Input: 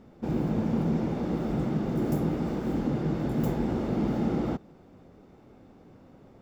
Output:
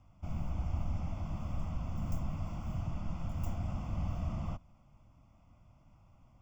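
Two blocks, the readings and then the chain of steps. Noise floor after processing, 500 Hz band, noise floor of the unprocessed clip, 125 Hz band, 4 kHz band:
-63 dBFS, -19.5 dB, -54 dBFS, -6.0 dB, -9.5 dB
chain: fixed phaser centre 2800 Hz, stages 8; frequency shift -150 Hz; gain -5 dB

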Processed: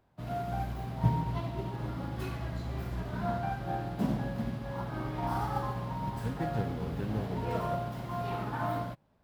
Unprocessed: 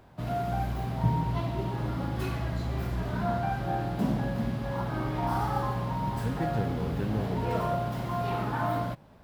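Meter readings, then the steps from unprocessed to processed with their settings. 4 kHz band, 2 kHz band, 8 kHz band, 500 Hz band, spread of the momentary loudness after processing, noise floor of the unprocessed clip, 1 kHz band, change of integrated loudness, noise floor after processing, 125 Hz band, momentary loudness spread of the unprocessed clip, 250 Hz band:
-4.5 dB, -4.5 dB, -4.5 dB, -4.0 dB, 5 LU, -41 dBFS, -4.0 dB, -4.0 dB, -49 dBFS, -4.0 dB, 3 LU, -4.0 dB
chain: upward expander 1.5:1, over -50 dBFS

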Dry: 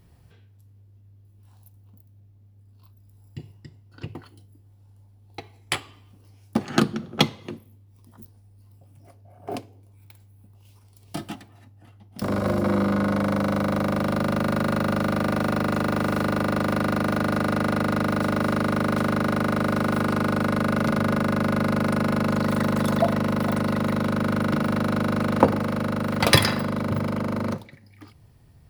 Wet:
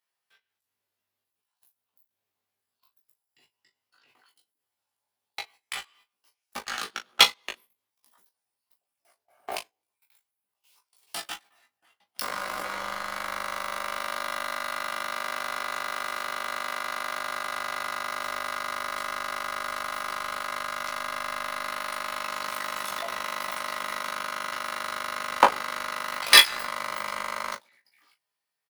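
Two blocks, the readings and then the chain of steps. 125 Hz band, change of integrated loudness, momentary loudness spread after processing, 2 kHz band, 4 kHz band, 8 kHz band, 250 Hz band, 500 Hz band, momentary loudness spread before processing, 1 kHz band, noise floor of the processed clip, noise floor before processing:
-31.5 dB, -4.0 dB, 15 LU, +0.5 dB, +5.5 dB, +4.0 dB, -26.5 dB, -12.0 dB, 13 LU, -1.5 dB, under -85 dBFS, -54 dBFS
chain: HPF 1200 Hz 12 dB/oct; level quantiser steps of 22 dB; sample leveller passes 2; doubler 16 ms -2.5 dB; early reflections 21 ms -7.5 dB, 39 ms -14.5 dB; gain +3.5 dB

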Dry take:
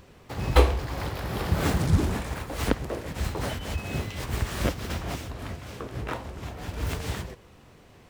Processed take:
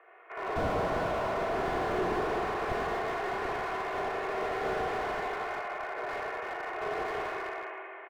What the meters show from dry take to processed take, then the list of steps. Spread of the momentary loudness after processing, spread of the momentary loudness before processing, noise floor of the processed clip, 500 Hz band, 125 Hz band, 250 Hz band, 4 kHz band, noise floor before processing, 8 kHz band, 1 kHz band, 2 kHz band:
6 LU, 14 LU, -45 dBFS, +1.0 dB, -16.5 dB, -7.0 dB, -8.0 dB, -53 dBFS, -14.0 dB, +4.0 dB, +1.5 dB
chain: spectral limiter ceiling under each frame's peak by 15 dB; speakerphone echo 0.38 s, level -7 dB; Schroeder reverb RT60 2.9 s, combs from 29 ms, DRR -6 dB; mistuned SSB +170 Hz 230–2100 Hz; comb 2.8 ms, depth 66%; slew limiter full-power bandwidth 62 Hz; gain -7 dB

